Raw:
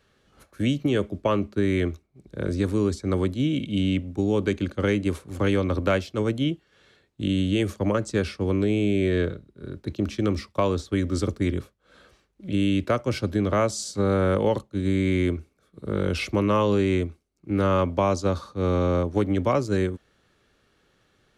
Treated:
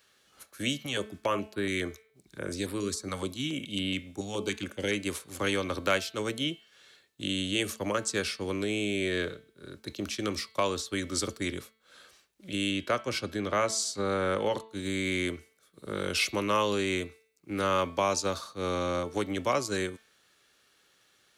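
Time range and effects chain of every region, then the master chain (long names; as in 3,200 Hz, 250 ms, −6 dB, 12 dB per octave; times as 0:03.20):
0:00.83–0:04.93: hum removal 214.5 Hz, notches 12 + notch on a step sequencer 7.1 Hz 350–6,300 Hz
0:12.71–0:14.69: high-shelf EQ 6,200 Hz −9.5 dB + hum removal 329.2 Hz, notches 10
whole clip: spectral tilt +3.5 dB per octave; hum removal 221.7 Hz, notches 21; level −2.5 dB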